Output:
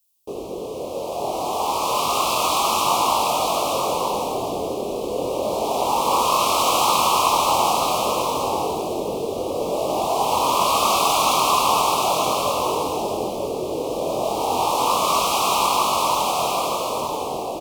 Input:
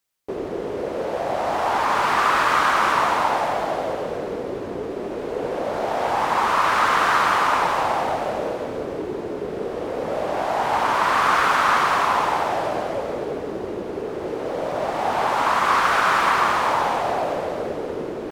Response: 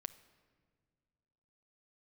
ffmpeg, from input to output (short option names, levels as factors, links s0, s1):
-af "aemphasis=mode=production:type=75kf,dynaudnorm=f=210:g=21:m=3.76,flanger=delay=22.5:depth=3.1:speed=0.31,asetrate=45864,aresample=44100,asuperstop=centerf=1700:order=8:qfactor=1.3,aecho=1:1:928:0.596"